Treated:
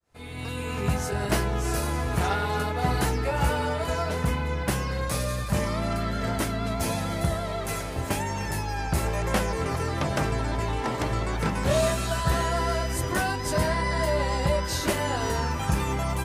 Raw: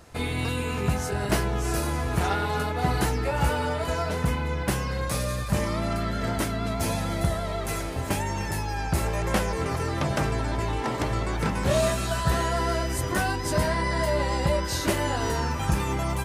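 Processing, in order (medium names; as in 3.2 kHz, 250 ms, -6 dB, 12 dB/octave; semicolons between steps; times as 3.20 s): fade-in on the opening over 0.89 s; de-hum 47.5 Hz, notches 8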